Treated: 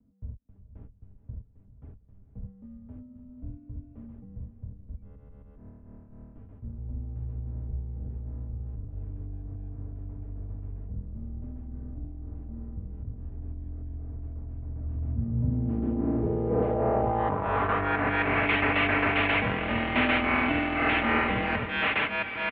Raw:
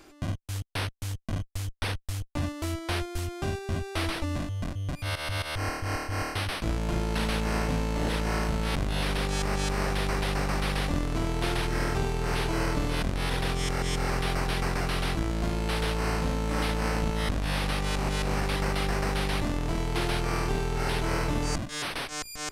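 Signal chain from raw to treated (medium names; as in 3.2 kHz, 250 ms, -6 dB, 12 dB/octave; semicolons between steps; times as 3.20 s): comb 5.5 ms, depth 56%; echo that smears into a reverb 466 ms, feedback 48%, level -12 dB; low-pass sweep 130 Hz -> 2.5 kHz, 14.65–18.48 s; mistuned SSB -100 Hz 200–3400 Hz; trim +3 dB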